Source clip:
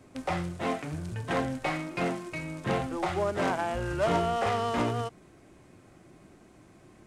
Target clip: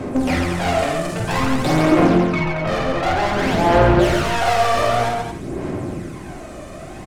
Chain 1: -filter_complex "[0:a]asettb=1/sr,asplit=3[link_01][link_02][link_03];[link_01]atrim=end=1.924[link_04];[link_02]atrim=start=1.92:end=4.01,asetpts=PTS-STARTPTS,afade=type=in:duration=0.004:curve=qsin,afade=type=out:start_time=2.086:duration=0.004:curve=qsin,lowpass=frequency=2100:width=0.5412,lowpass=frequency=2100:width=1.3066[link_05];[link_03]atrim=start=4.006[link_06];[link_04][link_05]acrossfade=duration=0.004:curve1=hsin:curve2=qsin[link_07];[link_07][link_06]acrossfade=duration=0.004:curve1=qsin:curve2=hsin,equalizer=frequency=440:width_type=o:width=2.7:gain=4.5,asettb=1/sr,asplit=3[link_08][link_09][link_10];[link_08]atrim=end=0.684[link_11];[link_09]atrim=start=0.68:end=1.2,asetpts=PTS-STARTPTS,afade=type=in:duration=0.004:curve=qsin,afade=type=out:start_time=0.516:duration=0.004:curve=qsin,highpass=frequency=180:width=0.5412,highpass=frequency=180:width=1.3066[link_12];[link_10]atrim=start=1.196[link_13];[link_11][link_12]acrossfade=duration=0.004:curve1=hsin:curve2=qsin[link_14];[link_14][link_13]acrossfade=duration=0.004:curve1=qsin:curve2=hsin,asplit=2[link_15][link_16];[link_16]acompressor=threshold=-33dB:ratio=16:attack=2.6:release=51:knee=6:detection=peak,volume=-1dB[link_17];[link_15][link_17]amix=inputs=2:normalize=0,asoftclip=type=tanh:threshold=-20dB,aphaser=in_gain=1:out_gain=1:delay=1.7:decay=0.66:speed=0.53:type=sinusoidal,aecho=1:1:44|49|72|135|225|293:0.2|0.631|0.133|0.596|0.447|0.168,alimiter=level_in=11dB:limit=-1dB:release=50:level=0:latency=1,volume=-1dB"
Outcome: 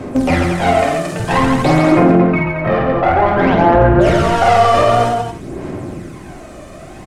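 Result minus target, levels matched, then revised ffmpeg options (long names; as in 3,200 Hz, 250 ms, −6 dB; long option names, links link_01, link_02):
downward compressor: peak gain reduction +7.5 dB; soft clipping: distortion −9 dB
-filter_complex "[0:a]asettb=1/sr,asplit=3[link_01][link_02][link_03];[link_01]atrim=end=1.924[link_04];[link_02]atrim=start=1.92:end=4.01,asetpts=PTS-STARTPTS,afade=type=in:duration=0.004:curve=qsin,afade=type=out:start_time=2.086:duration=0.004:curve=qsin,lowpass=frequency=2100:width=0.5412,lowpass=frequency=2100:width=1.3066[link_05];[link_03]atrim=start=4.006[link_06];[link_04][link_05]acrossfade=duration=0.004:curve1=hsin:curve2=qsin[link_07];[link_07][link_06]acrossfade=duration=0.004:curve1=qsin:curve2=hsin,equalizer=frequency=440:width_type=o:width=2.7:gain=4.5,asettb=1/sr,asplit=3[link_08][link_09][link_10];[link_08]atrim=end=0.684[link_11];[link_09]atrim=start=0.68:end=1.2,asetpts=PTS-STARTPTS,afade=type=in:duration=0.004:curve=qsin,afade=type=out:start_time=0.516:duration=0.004:curve=qsin,highpass=frequency=180:width=0.5412,highpass=frequency=180:width=1.3066[link_12];[link_10]atrim=start=1.196[link_13];[link_11][link_12]acrossfade=duration=0.004:curve1=hsin:curve2=qsin[link_14];[link_14][link_13]acrossfade=duration=0.004:curve1=qsin:curve2=hsin,asplit=2[link_15][link_16];[link_16]acompressor=threshold=-25dB:ratio=16:attack=2.6:release=51:knee=6:detection=peak,volume=-1dB[link_17];[link_15][link_17]amix=inputs=2:normalize=0,asoftclip=type=tanh:threshold=-31.5dB,aphaser=in_gain=1:out_gain=1:delay=1.7:decay=0.66:speed=0.53:type=sinusoidal,aecho=1:1:44|49|72|135|225|293:0.2|0.631|0.133|0.596|0.447|0.168,alimiter=level_in=11dB:limit=-1dB:release=50:level=0:latency=1,volume=-1dB"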